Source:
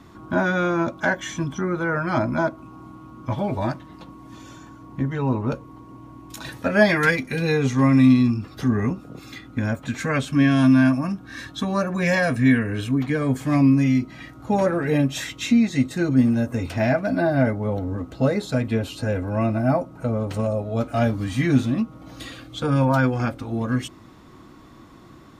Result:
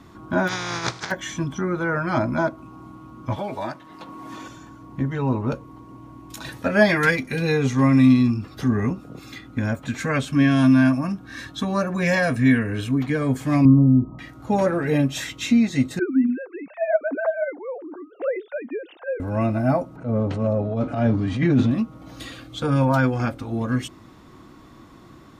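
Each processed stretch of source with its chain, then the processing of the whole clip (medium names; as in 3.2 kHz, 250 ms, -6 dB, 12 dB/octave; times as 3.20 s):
0.47–1.10 s: spectral contrast reduction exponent 0.28 + compressor with a negative ratio -25 dBFS, ratio -0.5 + cabinet simulation 110–5800 Hz, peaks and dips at 120 Hz +9 dB, 240 Hz -8 dB, 580 Hz -9 dB, 2.8 kHz -8 dB
3.36–4.48 s: high-pass 490 Hz 6 dB/octave + three bands compressed up and down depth 70%
13.65–14.19 s: brick-wall FIR low-pass 1.3 kHz + bass shelf 150 Hz +10 dB
15.99–19.20 s: formants replaced by sine waves + high-pass 310 Hz + distance through air 500 m
19.96–21.71 s: tilt EQ -2 dB/octave + transient shaper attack -11 dB, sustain +5 dB + band-pass 120–5400 Hz
whole clip: none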